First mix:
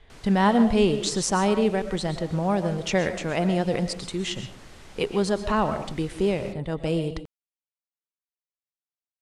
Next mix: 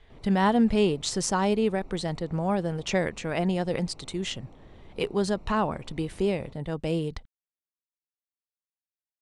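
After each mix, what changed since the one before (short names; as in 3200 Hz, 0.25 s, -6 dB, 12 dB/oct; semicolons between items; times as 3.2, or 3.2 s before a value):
background: add running mean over 27 samples; reverb: off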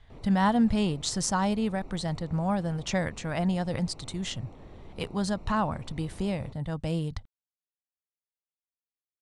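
speech: add fifteen-band EQ 100 Hz +9 dB, 400 Hz -11 dB, 2500 Hz -5 dB; background +3.0 dB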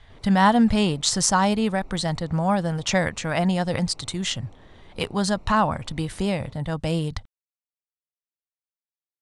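speech +9.0 dB; master: add low shelf 480 Hz -5 dB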